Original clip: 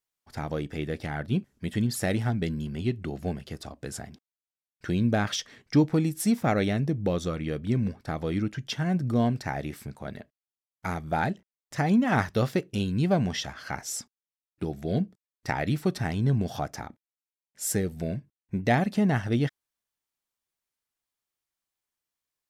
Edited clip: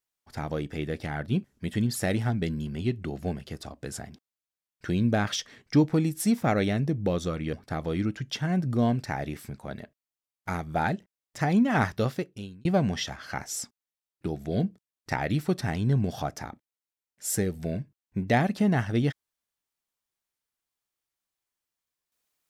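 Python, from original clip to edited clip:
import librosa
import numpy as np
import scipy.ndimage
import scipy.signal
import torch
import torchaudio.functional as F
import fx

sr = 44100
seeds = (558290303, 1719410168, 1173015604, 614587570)

y = fx.edit(x, sr, fx.cut(start_s=7.53, length_s=0.37),
    fx.fade_out_span(start_s=12.27, length_s=0.75), tone=tone)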